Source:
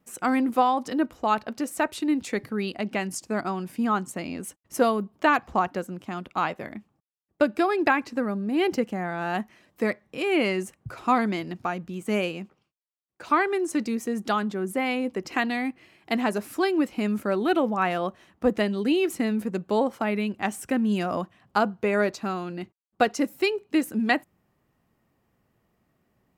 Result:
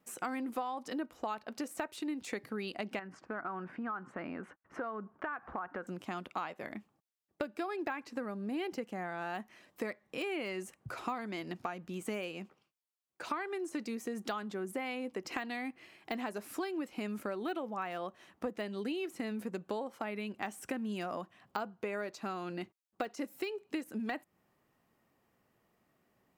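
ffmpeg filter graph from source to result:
-filter_complex "[0:a]asettb=1/sr,asplit=3[s0][s1][s2];[s0]atrim=end=2.994[s3];[s1]atrim=start=2.99:end=5.87,asetpts=PTS-STARTPTS,afade=t=in:d=0.004:c=qsin,afade=t=out:st=2.876:d=0.004:c=qsin,lowpass=f=1500:t=q:w=2.9,acompressor=threshold=0.0224:ratio=3:attack=3.2:release=140:knee=1:detection=peak[s4];[s2]atrim=start=5.866[s5];[s3][s4]acrossfade=d=0.004:c1=hsin:c2=qsin[s6];[s6][s5]acrossfade=d=0.004:c1=qsin:c2=hsin,deesser=0.8,lowshelf=f=180:g=-11,acompressor=threshold=0.02:ratio=6,volume=0.891"

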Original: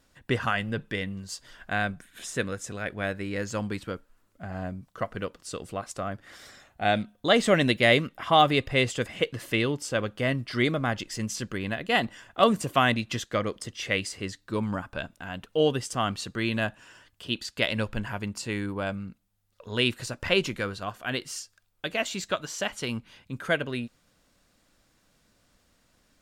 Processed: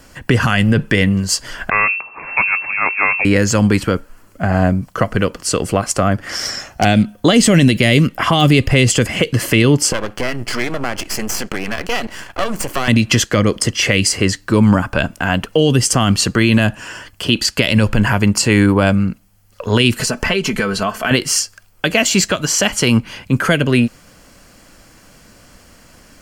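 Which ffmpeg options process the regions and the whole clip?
-filter_complex "[0:a]asettb=1/sr,asplit=3[s0][s1][s2];[s0]atrim=end=1.704[s3];[s1]atrim=start=1.7:end=3.25,asetpts=PTS-STARTPTS,afade=t=in:d=0.004:c=qsin,afade=t=out:st=1.546:d=0.004:c=qsin,aeval=exprs='if(lt(val(0),0),0.251*val(0),val(0))':c=same,lowpass=f=2300:t=q:w=0.5098,lowpass=f=2300:t=q:w=0.6013,lowpass=f=2300:t=q:w=0.9,lowpass=f=2300:t=q:w=2.563,afreqshift=-2700[s4];[s2]atrim=start=3.246[s5];[s3][s4]acrossfade=d=0.004:c1=hsin:c2=qsin[s6];[s6][s5]acrossfade=d=0.004:c1=qsin:c2=hsin,asettb=1/sr,asplit=3[s7][s8][s9];[s7]atrim=end=6.294[s10];[s8]atrim=start=6.29:end=6.85,asetpts=PTS-STARTPTS,afade=t=in:d=0.004:c=qsin,afade=t=out:st=0.556:d=0.004:c=qsin,equalizer=f=5500:w=3.2:g=13,aeval=exprs='0.0631*(abs(mod(val(0)/0.0631+3,4)-2)-1)':c=same[s11];[s9]atrim=start=6.846[s12];[s10][s11]acrossfade=d=0.004:c1=hsin:c2=qsin[s13];[s13][s12]acrossfade=d=0.004:c1=qsin:c2=hsin,asettb=1/sr,asplit=3[s14][s15][s16];[s14]atrim=end=9.924[s17];[s15]atrim=start=9.92:end=12.88,asetpts=PTS-STARTPTS,afade=t=in:d=0.004:c=qsin,afade=t=out:st=2.956:d=0.004:c=qsin,lowshelf=f=220:g=-6.5,acompressor=threshold=0.02:ratio=4:attack=3.2:release=140:knee=1:detection=peak,aeval=exprs='max(val(0),0)':c=same[s18];[s16]atrim=start=12.876[s19];[s17][s18]acrossfade=d=0.004:c1=hsin:c2=qsin[s20];[s20][s19]acrossfade=d=0.004:c1=qsin:c2=hsin,asettb=1/sr,asplit=3[s21][s22][s23];[s21]atrim=end=19.964[s24];[s22]atrim=start=19.96:end=21.11,asetpts=PTS-STARTPTS,afade=t=in:d=0.004:c=qsin,afade=t=out:st=1.146:d=0.004:c=qsin,aecho=1:1:4.6:0.66,atrim=end_sample=50715,acompressor=threshold=0.0178:ratio=5:attack=3.2:release=140:knee=1:detection=peak[s25];[s23]atrim=start=21.106[s26];[s24][s25]acrossfade=d=0.004:c1=hsin:c2=qsin[s27];[s27][s26]acrossfade=d=0.004:c1=qsin:c2=hsin,acrossover=split=310|3000[s28][s29][s30];[s29]acompressor=threshold=0.02:ratio=6[s31];[s28][s31][s30]amix=inputs=3:normalize=0,bandreject=f=3700:w=5.2,alimiter=level_in=12.6:limit=0.891:release=50:level=0:latency=1,volume=0.891"

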